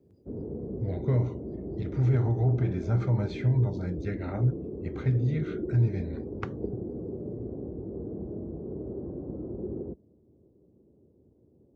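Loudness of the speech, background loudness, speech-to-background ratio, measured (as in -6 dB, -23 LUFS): -29.0 LUFS, -37.0 LUFS, 8.0 dB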